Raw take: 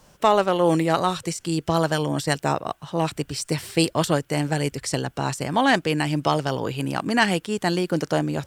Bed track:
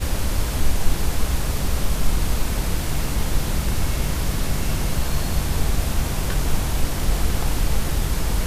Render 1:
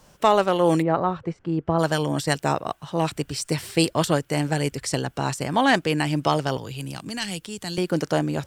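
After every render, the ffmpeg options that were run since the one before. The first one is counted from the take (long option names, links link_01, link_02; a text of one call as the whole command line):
ffmpeg -i in.wav -filter_complex "[0:a]asplit=3[link_01][link_02][link_03];[link_01]afade=type=out:start_time=0.81:duration=0.02[link_04];[link_02]lowpass=1300,afade=type=in:start_time=0.81:duration=0.02,afade=type=out:start_time=1.78:duration=0.02[link_05];[link_03]afade=type=in:start_time=1.78:duration=0.02[link_06];[link_04][link_05][link_06]amix=inputs=3:normalize=0,asettb=1/sr,asplit=3[link_07][link_08][link_09];[link_07]atrim=end=6.574[link_10];[link_08]atrim=start=6.57:end=7.78,asetpts=PTS-STARTPTS,afade=type=in:duration=0.004:curve=qsin,afade=type=out:start_time=1.206:duration=0.004:curve=qsin,acrossover=split=140|3000[link_11][link_12][link_13];[link_12]acompressor=threshold=-40dB:ratio=2.5:attack=3.2:release=140:knee=2.83:detection=peak[link_14];[link_11][link_14][link_13]amix=inputs=3:normalize=0[link_15];[link_09]atrim=start=7.776[link_16];[link_10][link_15]acrossfade=duration=0.004:curve1=hsin:curve2=qsin[link_17];[link_17][link_16]acrossfade=duration=0.004:curve1=qsin:curve2=hsin" out.wav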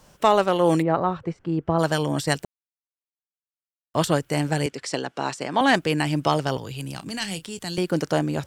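ffmpeg -i in.wav -filter_complex "[0:a]asettb=1/sr,asplit=3[link_01][link_02][link_03];[link_01]atrim=end=4.664[link_04];[link_02]atrim=start=4.66:end=5.61,asetpts=PTS-STARTPTS,afade=type=in:duration=0.004:curve=qsin,afade=type=out:start_time=0.946:duration=0.004:curve=qsin,highpass=250,lowpass=6200[link_05];[link_03]atrim=start=5.606[link_06];[link_04][link_05]acrossfade=duration=0.004:curve1=hsin:curve2=qsin[link_07];[link_07][link_06]acrossfade=duration=0.004:curve1=qsin:curve2=hsin,asettb=1/sr,asplit=3[link_08][link_09][link_10];[link_08]atrim=end=6.964[link_11];[link_09]atrim=start=6.96:end=7.59,asetpts=PTS-STARTPTS,afade=type=in:duration=0.004:curve=qsin,afade=type=out:start_time=0.626:duration=0.004:curve=qsin,asplit=2[link_12][link_13];[link_13]adelay=31,volume=-14dB[link_14];[link_12][link_14]amix=inputs=2:normalize=0,atrim=end_sample=27783[link_15];[link_10]atrim=start=7.586[link_16];[link_11][link_15]acrossfade=duration=0.004:curve1=hsin:curve2=qsin[link_17];[link_17][link_16]acrossfade=duration=0.004:curve1=qsin:curve2=hsin,asplit=3[link_18][link_19][link_20];[link_18]atrim=end=2.45,asetpts=PTS-STARTPTS,afade=type=out:start_time=2.446:duration=0.004:curve=hsin[link_21];[link_19]atrim=start=2.45:end=3.94,asetpts=PTS-STARTPTS,volume=0[link_22];[link_20]atrim=start=3.94,asetpts=PTS-STARTPTS,afade=type=in:duration=0.004:curve=hsin[link_23];[link_21][link_22][link_23]concat=n=3:v=0:a=1" out.wav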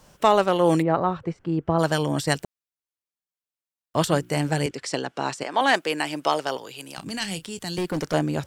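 ffmpeg -i in.wav -filter_complex "[0:a]asettb=1/sr,asplit=3[link_01][link_02][link_03];[link_01]atrim=end=4.054[link_04];[link_02]atrim=start=4.05:end=4.71,asetpts=PTS-STARTPTS,afade=type=in:duration=0.004:curve=qsin,afade=type=out:start_time=0.656:duration=0.004:curve=qsin,bandreject=frequency=60:width_type=h:width=6,bandreject=frequency=120:width_type=h:width=6,bandreject=frequency=180:width_type=h:width=6,bandreject=frequency=240:width_type=h:width=6,bandreject=frequency=300:width_type=h:width=6,bandreject=frequency=360:width_type=h:width=6[link_05];[link_03]atrim=start=4.706[link_06];[link_04][link_05]acrossfade=duration=0.004:curve1=hsin:curve2=qsin[link_07];[link_07][link_06]acrossfade=duration=0.004:curve1=qsin:curve2=hsin,asettb=1/sr,asplit=3[link_08][link_09][link_10];[link_08]atrim=end=5.434[link_11];[link_09]atrim=start=5.43:end=6.98,asetpts=PTS-STARTPTS,afade=type=in:duration=0.004:curve=qsin,afade=type=out:start_time=1.546:duration=0.004:curve=qsin,highpass=390[link_12];[link_10]atrim=start=6.976[link_13];[link_11][link_12]acrossfade=duration=0.004:curve1=hsin:curve2=qsin[link_14];[link_14][link_13]acrossfade=duration=0.004:curve1=qsin:curve2=hsin,asettb=1/sr,asplit=3[link_15][link_16][link_17];[link_15]atrim=end=7.484[link_18];[link_16]atrim=start=7.48:end=8.14,asetpts=PTS-STARTPTS,afade=type=in:duration=0.004:curve=qsin,afade=type=out:start_time=0.656:duration=0.004:curve=qsin,volume=22dB,asoftclip=hard,volume=-22dB[link_19];[link_17]atrim=start=8.136[link_20];[link_18][link_19]acrossfade=duration=0.004:curve1=hsin:curve2=qsin[link_21];[link_21][link_20]acrossfade=duration=0.004:curve1=qsin:curve2=hsin" out.wav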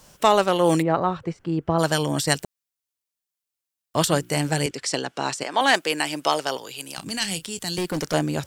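ffmpeg -i in.wav -af "highshelf=frequency=3200:gain=7.5" out.wav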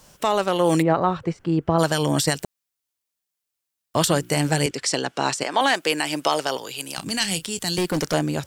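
ffmpeg -i in.wav -af "alimiter=limit=-10.5dB:level=0:latency=1:release=113,dynaudnorm=framelen=450:gausssize=3:maxgain=3.5dB" out.wav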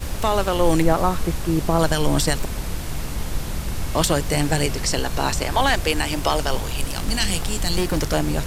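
ffmpeg -i in.wav -i bed.wav -filter_complex "[1:a]volume=-4.5dB[link_01];[0:a][link_01]amix=inputs=2:normalize=0" out.wav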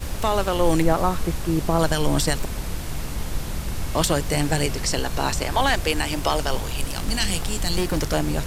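ffmpeg -i in.wav -af "volume=-1.5dB" out.wav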